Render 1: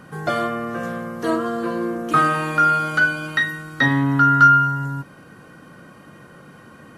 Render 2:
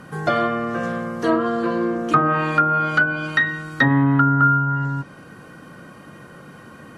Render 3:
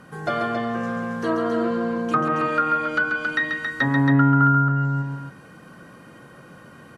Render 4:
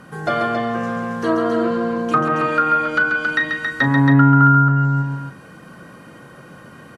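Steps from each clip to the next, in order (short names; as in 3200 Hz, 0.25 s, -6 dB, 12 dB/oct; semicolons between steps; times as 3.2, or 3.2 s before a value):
treble ducked by the level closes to 920 Hz, closed at -12 dBFS; gain +2.5 dB
notches 50/100/150/200/250/300/350 Hz; loudspeakers at several distances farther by 47 m -6 dB, 94 m -5 dB; gain -5 dB
doubler 37 ms -13 dB; gain +4 dB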